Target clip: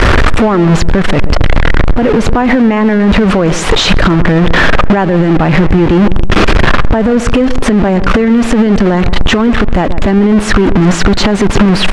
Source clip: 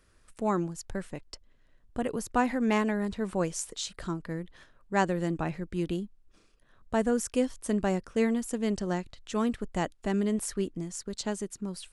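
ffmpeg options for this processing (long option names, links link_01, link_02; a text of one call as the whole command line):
ffmpeg -i in.wav -filter_complex "[0:a]aeval=exprs='val(0)+0.5*0.0447*sgn(val(0))':channel_layout=same,lowpass=2500,acompressor=threshold=-30dB:ratio=6,asplit=2[link_01][link_02];[link_02]adelay=132,lowpass=frequency=960:poles=1,volume=-15.5dB,asplit=2[link_03][link_04];[link_04]adelay=132,lowpass=frequency=960:poles=1,volume=0.47,asplit=2[link_05][link_06];[link_06]adelay=132,lowpass=frequency=960:poles=1,volume=0.47,asplit=2[link_07][link_08];[link_08]adelay=132,lowpass=frequency=960:poles=1,volume=0.47[link_09];[link_03][link_05][link_07][link_09]amix=inputs=4:normalize=0[link_10];[link_01][link_10]amix=inputs=2:normalize=0,alimiter=level_in=29.5dB:limit=-1dB:release=50:level=0:latency=1,volume=-1dB" out.wav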